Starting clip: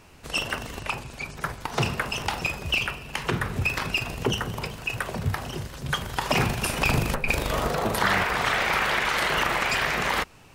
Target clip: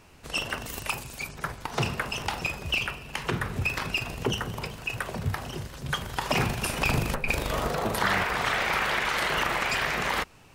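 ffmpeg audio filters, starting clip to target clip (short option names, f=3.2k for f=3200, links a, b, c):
-filter_complex "[0:a]asettb=1/sr,asplit=3[a][b][c];[a]atrim=end=0.664[d];[b]atrim=start=0.66:end=1.29,asetpts=PTS-STARTPTS,afade=t=in:d=0.004:c=qsin,afade=t=out:st=0.626:d=0.004:c=qsin,aemphasis=mode=production:type=50fm[e];[c]atrim=start=1.286[f];[d][e]acrossfade=d=0.004:c1=hsin:c2=qsin[g];[g][f]acrossfade=d=0.004:c1=qsin:c2=hsin,volume=-2.5dB"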